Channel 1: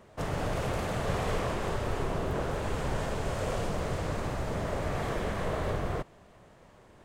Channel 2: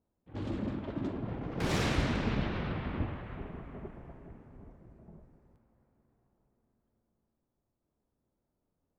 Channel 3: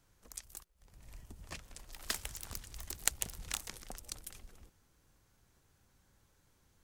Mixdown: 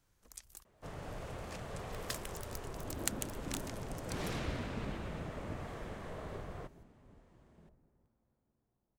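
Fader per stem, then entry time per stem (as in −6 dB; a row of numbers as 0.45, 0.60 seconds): −13.5, −9.5, −4.5 decibels; 0.65, 2.50, 0.00 seconds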